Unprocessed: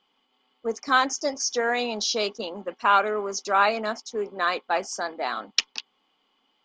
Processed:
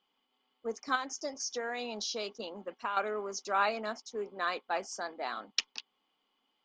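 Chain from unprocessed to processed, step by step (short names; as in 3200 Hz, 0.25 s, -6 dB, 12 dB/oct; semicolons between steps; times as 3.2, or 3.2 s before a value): 0.95–2.97 compressor 6:1, threshold -24 dBFS, peak gain reduction 9.5 dB; gain -8.5 dB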